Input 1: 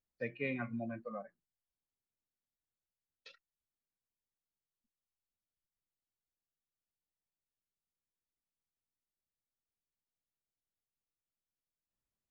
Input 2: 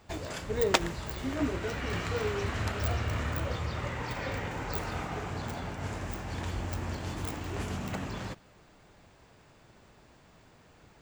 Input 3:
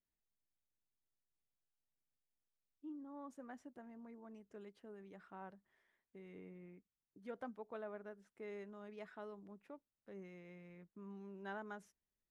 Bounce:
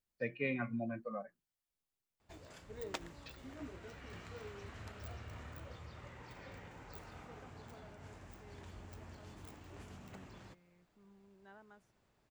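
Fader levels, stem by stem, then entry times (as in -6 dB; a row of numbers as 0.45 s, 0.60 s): +1.0 dB, -17.5 dB, -12.0 dB; 0.00 s, 2.20 s, 0.00 s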